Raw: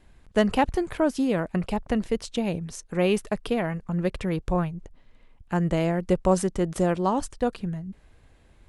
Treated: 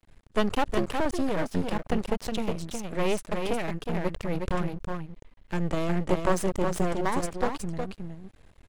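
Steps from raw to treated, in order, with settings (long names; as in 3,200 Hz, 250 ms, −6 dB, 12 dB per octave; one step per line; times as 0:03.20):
single-tap delay 364 ms −5 dB
half-wave rectification
level +1.5 dB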